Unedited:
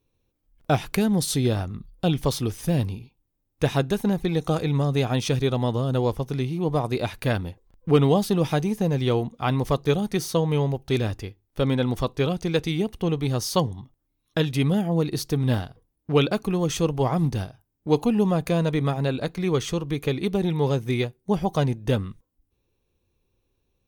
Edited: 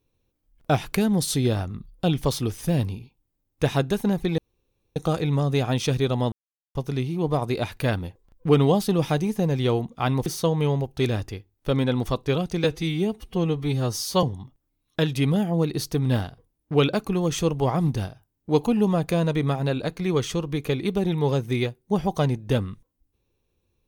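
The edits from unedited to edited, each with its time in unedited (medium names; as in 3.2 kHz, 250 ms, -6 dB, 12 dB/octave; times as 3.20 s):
4.38 s: insert room tone 0.58 s
5.74–6.17 s: mute
9.68–10.17 s: delete
12.55–13.61 s: stretch 1.5×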